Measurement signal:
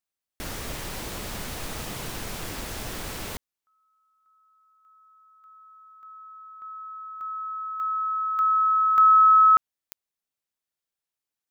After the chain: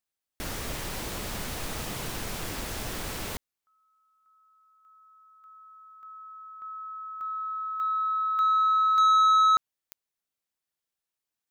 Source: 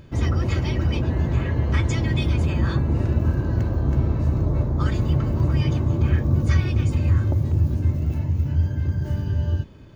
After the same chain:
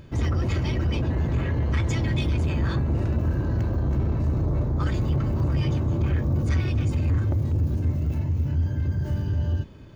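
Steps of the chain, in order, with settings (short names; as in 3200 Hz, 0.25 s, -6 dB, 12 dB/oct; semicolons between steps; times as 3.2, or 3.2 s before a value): soft clip -17.5 dBFS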